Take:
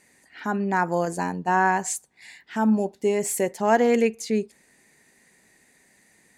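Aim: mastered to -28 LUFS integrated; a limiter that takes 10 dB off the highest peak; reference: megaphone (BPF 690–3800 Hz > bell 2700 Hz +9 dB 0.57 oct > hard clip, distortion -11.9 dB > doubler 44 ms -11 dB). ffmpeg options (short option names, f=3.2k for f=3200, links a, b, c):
-filter_complex "[0:a]alimiter=limit=-18dB:level=0:latency=1,highpass=690,lowpass=3.8k,equalizer=f=2.7k:t=o:w=0.57:g=9,asoftclip=type=hard:threshold=-27dB,asplit=2[a][b];[b]adelay=44,volume=-11dB[c];[a][c]amix=inputs=2:normalize=0,volume=7dB"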